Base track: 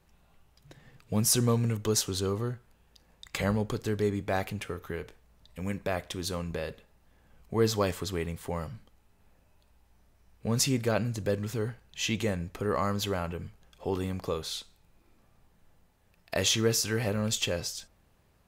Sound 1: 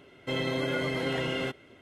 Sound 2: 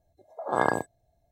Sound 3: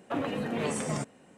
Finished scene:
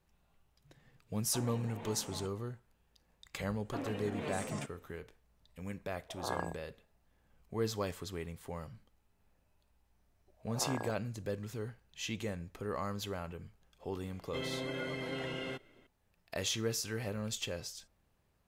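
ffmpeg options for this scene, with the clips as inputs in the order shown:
ffmpeg -i bed.wav -i cue0.wav -i cue1.wav -i cue2.wav -filter_complex "[3:a]asplit=2[link_01][link_02];[2:a]asplit=2[link_03][link_04];[0:a]volume=-9dB[link_05];[link_01]equalizer=frequency=880:width_type=o:width=0.32:gain=11.5[link_06];[link_04]alimiter=limit=-11dB:level=0:latency=1:release=71[link_07];[link_06]atrim=end=1.37,asetpts=PTS-STARTPTS,volume=-16.5dB,afade=type=in:duration=0.004:curve=hsin,afade=type=out:start_time=1.366:duration=0.004:curve=hsin,adelay=1230[link_08];[link_02]atrim=end=1.37,asetpts=PTS-STARTPTS,volume=-9dB,afade=type=in:duration=0.004:curve=hsin,afade=type=out:start_time=1.366:duration=0.004:curve=hsin,adelay=3620[link_09];[link_03]atrim=end=1.31,asetpts=PTS-STARTPTS,volume=-13.5dB,afade=type=in:duration=0.004:curve=hsin,afade=type=out:start_time=1.306:duration=0.004:curve=hsin,adelay=5710[link_10];[link_07]atrim=end=1.31,asetpts=PTS-STARTPTS,volume=-12.5dB,afade=type=in:duration=0.004:curve=hsin,afade=type=out:start_time=1.306:duration=0.004:curve=hsin,adelay=10090[link_11];[1:a]atrim=end=1.81,asetpts=PTS-STARTPTS,volume=-9dB,afade=type=in:duration=0.004:curve=hsin,afade=type=out:start_time=1.806:duration=0.004:curve=hsin,adelay=14060[link_12];[link_05][link_08][link_09][link_10][link_11][link_12]amix=inputs=6:normalize=0" out.wav

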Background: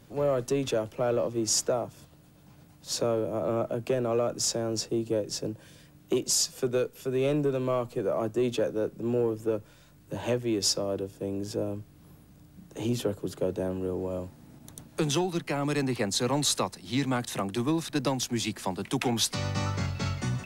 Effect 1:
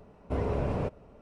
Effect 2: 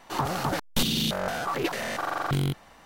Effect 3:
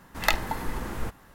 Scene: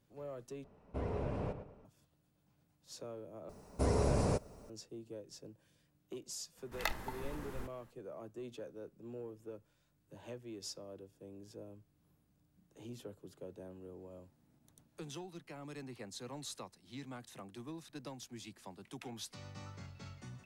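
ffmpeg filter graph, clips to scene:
ffmpeg -i bed.wav -i cue0.wav -i cue1.wav -i cue2.wav -filter_complex "[1:a]asplit=2[link_01][link_02];[0:a]volume=-19.5dB[link_03];[link_01]asplit=2[link_04][link_05];[link_05]adelay=109,lowpass=frequency=2600:poles=1,volume=-9dB,asplit=2[link_06][link_07];[link_07]adelay=109,lowpass=frequency=2600:poles=1,volume=0.36,asplit=2[link_08][link_09];[link_09]adelay=109,lowpass=frequency=2600:poles=1,volume=0.36,asplit=2[link_10][link_11];[link_11]adelay=109,lowpass=frequency=2600:poles=1,volume=0.36[link_12];[link_04][link_06][link_08][link_10][link_12]amix=inputs=5:normalize=0[link_13];[link_02]aexciter=amount=7.1:drive=6.7:freq=4500[link_14];[3:a]acrusher=bits=9:mode=log:mix=0:aa=0.000001[link_15];[link_03]asplit=3[link_16][link_17][link_18];[link_16]atrim=end=0.644[link_19];[link_13]atrim=end=1.21,asetpts=PTS-STARTPTS,volume=-8.5dB[link_20];[link_17]atrim=start=1.846:end=3.494[link_21];[link_14]atrim=end=1.21,asetpts=PTS-STARTPTS,volume=-1.5dB[link_22];[link_18]atrim=start=4.696[link_23];[link_15]atrim=end=1.34,asetpts=PTS-STARTPTS,volume=-13dB,afade=type=in:duration=0.004:curve=hsin,afade=type=out:start_time=1.336:duration=0.004:curve=hsin,adelay=6570[link_24];[link_19][link_20]acrossfade=duration=0.004:curve1=hsin:curve2=hsin[link_25];[link_25][link_21]acrossfade=duration=0.004:curve1=hsin:curve2=hsin[link_26];[link_26][link_22]acrossfade=duration=0.004:curve1=hsin:curve2=hsin[link_27];[link_27][link_23]acrossfade=duration=0.004:curve1=hsin:curve2=hsin[link_28];[link_28][link_24]amix=inputs=2:normalize=0" out.wav

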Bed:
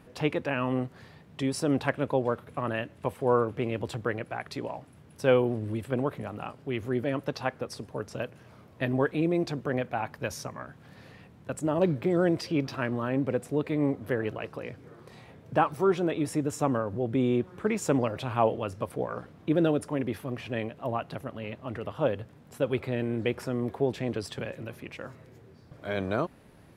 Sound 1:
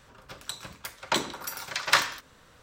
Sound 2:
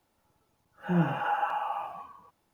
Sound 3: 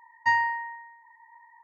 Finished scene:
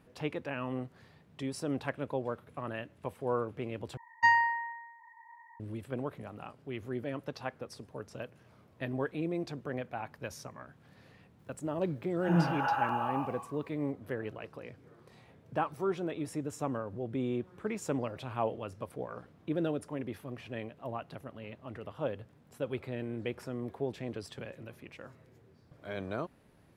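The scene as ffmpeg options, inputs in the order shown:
ffmpeg -i bed.wav -i cue0.wav -i cue1.wav -i cue2.wav -filter_complex "[0:a]volume=-8dB,asplit=2[link_01][link_02];[link_01]atrim=end=3.974[link_03];[3:a]atrim=end=1.63,asetpts=PTS-STARTPTS,volume=-1dB[link_04];[link_02]atrim=start=5.596[link_05];[2:a]atrim=end=2.53,asetpts=PTS-STARTPTS,volume=-1.5dB,afade=type=in:duration=0.004:curve=hsin,afade=type=out:start_time=2.526:duration=0.004:curve=hsin,adelay=11390[link_06];[link_03][link_04]acrossfade=duration=0.004:curve1=hsin:curve2=hsin[link_07];[link_07][link_05]acrossfade=duration=0.004:curve1=hsin:curve2=hsin[link_08];[link_08][link_06]amix=inputs=2:normalize=0" out.wav

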